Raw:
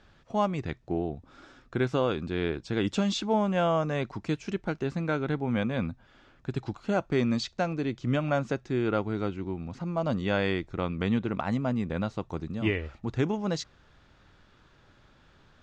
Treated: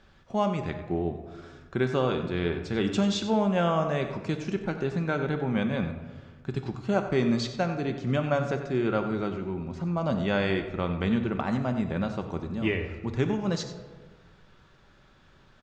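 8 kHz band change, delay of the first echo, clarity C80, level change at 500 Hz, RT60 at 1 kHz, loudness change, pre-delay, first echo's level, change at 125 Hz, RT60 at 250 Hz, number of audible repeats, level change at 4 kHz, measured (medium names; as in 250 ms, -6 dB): no reading, 93 ms, 9.0 dB, +1.5 dB, 1.3 s, +1.5 dB, 5 ms, -12.5 dB, +1.5 dB, 1.6 s, 1, +1.0 dB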